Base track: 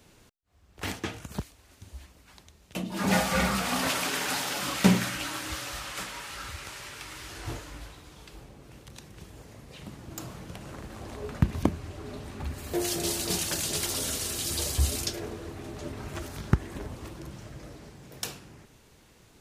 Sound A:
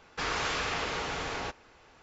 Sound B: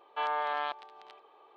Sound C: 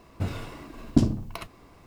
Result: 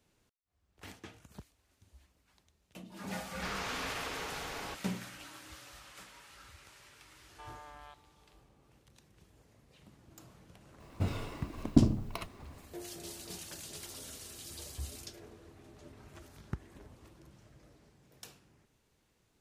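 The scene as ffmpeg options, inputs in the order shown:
ffmpeg -i bed.wav -i cue0.wav -i cue1.wav -i cue2.wav -filter_complex "[0:a]volume=-16dB[link_01];[2:a]alimiter=level_in=1.5dB:limit=-24dB:level=0:latency=1:release=71,volume=-1.5dB[link_02];[3:a]equalizer=frequency=1600:width=4.4:gain=-3.5[link_03];[1:a]atrim=end=2.02,asetpts=PTS-STARTPTS,volume=-7.5dB,afade=type=in:duration=0.004:curve=hsin,afade=type=out:start_time=2.016:duration=0.004:curve=hsin,adelay=3240[link_04];[link_02]atrim=end=1.56,asetpts=PTS-STARTPTS,volume=-17dB,afade=type=in:duration=0.004:curve=hsin,afade=type=out:start_time=1.556:duration=0.004:curve=hsin,adelay=318402S[link_05];[link_03]atrim=end=1.86,asetpts=PTS-STARTPTS,volume=-3dB,afade=type=in:duration=0.004:curve=hsin,afade=type=out:start_time=1.856:duration=0.004:curve=hsin,adelay=10800[link_06];[link_01][link_04][link_05][link_06]amix=inputs=4:normalize=0" out.wav

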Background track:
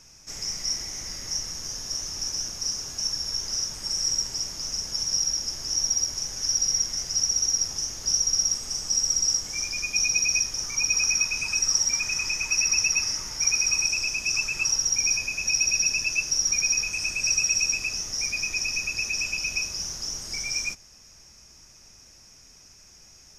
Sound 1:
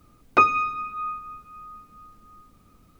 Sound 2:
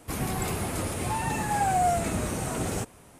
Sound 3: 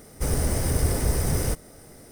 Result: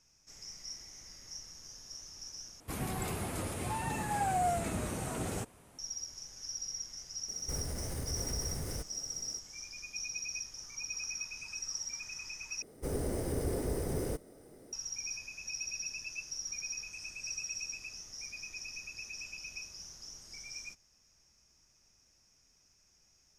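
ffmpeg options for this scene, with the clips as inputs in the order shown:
ffmpeg -i bed.wav -i cue0.wav -i cue1.wav -i cue2.wav -filter_complex "[3:a]asplit=2[link_01][link_02];[0:a]volume=-16.5dB[link_03];[link_01]alimiter=limit=-21dB:level=0:latency=1:release=151[link_04];[link_02]equalizer=frequency=380:width=0.8:gain=11.5[link_05];[link_03]asplit=3[link_06][link_07][link_08];[link_06]atrim=end=2.604[link_09];[2:a]atrim=end=3.19,asetpts=PTS-STARTPTS,volume=-7dB[link_10];[link_07]atrim=start=5.786:end=12.624[link_11];[link_05]atrim=end=2.11,asetpts=PTS-STARTPTS,volume=-14.5dB[link_12];[link_08]atrim=start=14.726[link_13];[link_04]atrim=end=2.11,asetpts=PTS-STARTPTS,volume=-8.5dB,afade=type=in:duration=0.004:curve=hsin,afade=type=out:start_time=2.106:duration=0.004:curve=hsin,adelay=7280[link_14];[link_09][link_10]acrossfade=duration=0.004:curve1=hsin:curve2=hsin[link_15];[link_15][link_11]acrossfade=duration=0.004:curve1=hsin:curve2=hsin[link_16];[link_16][link_12]acrossfade=duration=0.004:curve1=hsin:curve2=hsin[link_17];[link_17][link_13]acrossfade=duration=0.004:curve1=hsin:curve2=hsin[link_18];[link_18][link_14]amix=inputs=2:normalize=0" out.wav

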